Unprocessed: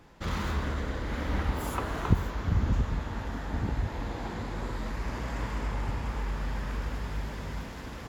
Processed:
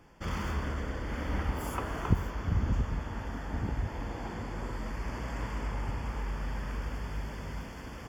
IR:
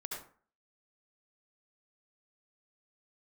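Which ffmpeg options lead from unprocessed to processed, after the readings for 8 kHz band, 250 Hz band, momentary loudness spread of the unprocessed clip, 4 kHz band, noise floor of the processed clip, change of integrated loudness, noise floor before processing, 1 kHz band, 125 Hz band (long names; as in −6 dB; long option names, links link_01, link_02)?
−2.5 dB, −2.5 dB, 8 LU, −4.0 dB, −43 dBFS, −2.5 dB, −41 dBFS, −2.5 dB, −2.5 dB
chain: -af "asuperstop=centerf=3900:order=8:qfactor=5,volume=-2.5dB"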